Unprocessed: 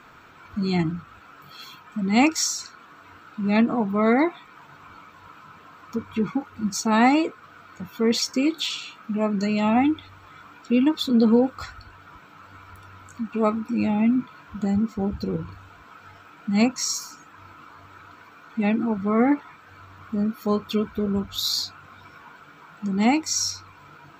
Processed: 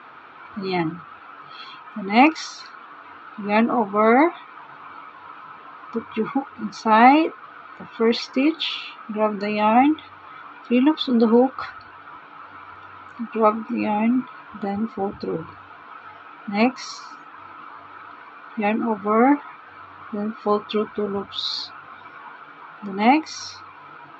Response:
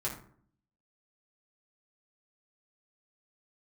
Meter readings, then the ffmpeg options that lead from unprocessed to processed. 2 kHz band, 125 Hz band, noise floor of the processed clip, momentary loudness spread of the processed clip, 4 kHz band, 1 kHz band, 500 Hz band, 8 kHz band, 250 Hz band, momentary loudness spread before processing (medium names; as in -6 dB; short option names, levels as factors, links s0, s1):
+4.5 dB, -5.0 dB, -44 dBFS, 24 LU, -0.5 dB, +8.0 dB, +4.0 dB, under -10 dB, 0.0 dB, 16 LU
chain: -af "highpass=190,equalizer=f=190:t=q:w=4:g=-9,equalizer=f=820:t=q:w=4:g=5,equalizer=f=1200:t=q:w=4:g=4,lowpass=f=3800:w=0.5412,lowpass=f=3800:w=1.3066,volume=1.58"